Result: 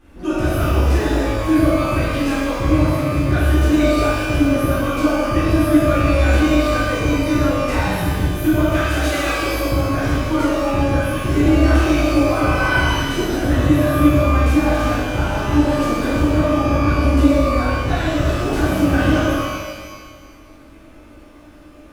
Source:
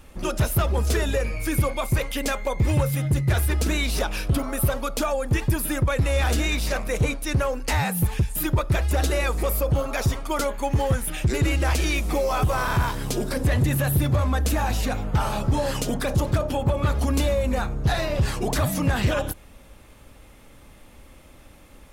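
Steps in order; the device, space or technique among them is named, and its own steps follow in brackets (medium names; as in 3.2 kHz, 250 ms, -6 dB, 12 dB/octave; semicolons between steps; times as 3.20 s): inside a helmet (treble shelf 4.2 kHz -9.5 dB; small resonant body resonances 310/1500 Hz, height 14 dB, ringing for 60 ms); 8.62–9.41 s: tilt shelf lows -7 dB, about 730 Hz; pitch-shifted reverb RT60 1.5 s, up +12 st, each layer -8 dB, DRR -10 dB; trim -7.5 dB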